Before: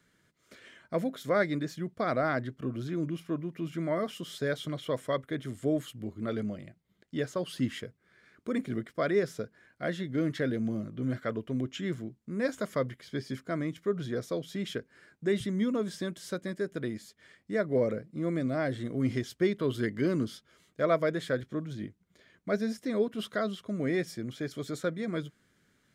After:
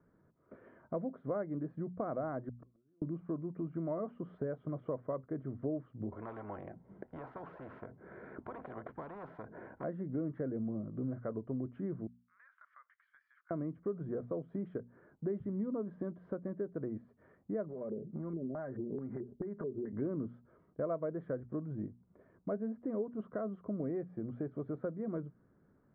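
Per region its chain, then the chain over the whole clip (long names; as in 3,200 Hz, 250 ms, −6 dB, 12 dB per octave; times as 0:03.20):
0:02.49–0:03.02: Bessel high-pass filter 230 Hz + downward compressor, threshold −39 dBFS + gate with flip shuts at −37 dBFS, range −33 dB
0:06.12–0:09.84: low-shelf EQ 200 Hz −10.5 dB + notch filter 1,200 Hz, Q 5.5 + every bin compressed towards the loudest bin 10 to 1
0:12.07–0:13.51: Butterworth high-pass 1,400 Hz + downward compressor 4 to 1, threshold −48 dBFS
0:17.68–0:19.93: comb filter 5 ms, depth 53% + downward compressor 12 to 1, threshold −37 dBFS + auto-filter low-pass square 2.3 Hz 390–1,700 Hz
whole clip: mains-hum notches 60/120/180/240 Hz; downward compressor 3 to 1, threshold −40 dBFS; low-pass filter 1,100 Hz 24 dB per octave; level +3 dB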